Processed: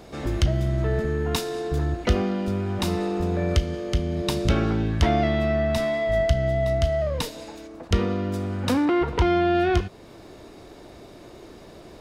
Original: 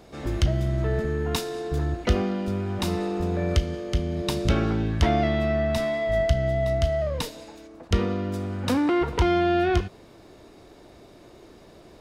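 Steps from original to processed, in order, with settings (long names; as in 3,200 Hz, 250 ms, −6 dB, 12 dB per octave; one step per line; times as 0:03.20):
0:08.85–0:09.55: high-shelf EQ 7,300 Hz −10 dB
in parallel at −3 dB: downward compressor, threshold −36 dBFS, peak gain reduction 19.5 dB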